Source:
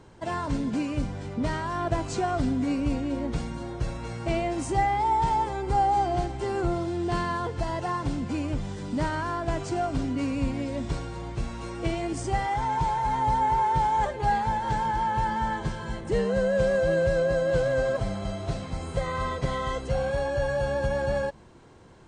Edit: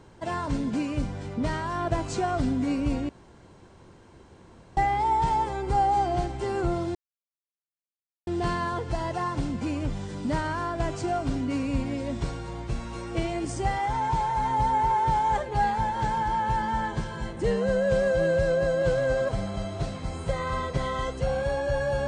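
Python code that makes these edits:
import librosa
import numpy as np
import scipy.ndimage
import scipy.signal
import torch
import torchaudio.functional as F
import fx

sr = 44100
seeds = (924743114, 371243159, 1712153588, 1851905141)

y = fx.edit(x, sr, fx.room_tone_fill(start_s=3.09, length_s=1.68),
    fx.insert_silence(at_s=6.95, length_s=1.32), tone=tone)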